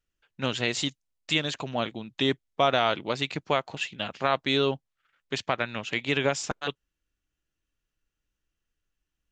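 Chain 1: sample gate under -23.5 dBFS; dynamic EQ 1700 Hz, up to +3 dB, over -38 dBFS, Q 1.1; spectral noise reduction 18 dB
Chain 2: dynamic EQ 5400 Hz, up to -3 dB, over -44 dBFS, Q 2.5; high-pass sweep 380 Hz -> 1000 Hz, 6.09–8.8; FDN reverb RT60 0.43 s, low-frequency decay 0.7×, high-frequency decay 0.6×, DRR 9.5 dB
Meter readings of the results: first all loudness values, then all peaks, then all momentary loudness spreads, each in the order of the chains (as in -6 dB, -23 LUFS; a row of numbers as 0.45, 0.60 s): -28.5, -25.0 LUFS; -7.5, -6.5 dBFS; 13, 11 LU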